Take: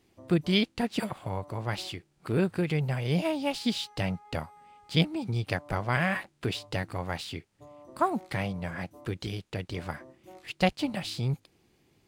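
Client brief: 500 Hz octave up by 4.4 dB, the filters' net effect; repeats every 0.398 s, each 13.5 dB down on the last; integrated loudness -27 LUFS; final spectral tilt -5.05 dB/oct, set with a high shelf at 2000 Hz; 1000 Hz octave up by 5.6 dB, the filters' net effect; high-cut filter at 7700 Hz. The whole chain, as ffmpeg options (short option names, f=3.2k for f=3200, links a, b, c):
-af "lowpass=7.7k,equalizer=f=500:t=o:g=4,equalizer=f=1k:t=o:g=6.5,highshelf=f=2k:g=-3,aecho=1:1:398|796:0.211|0.0444,volume=2dB"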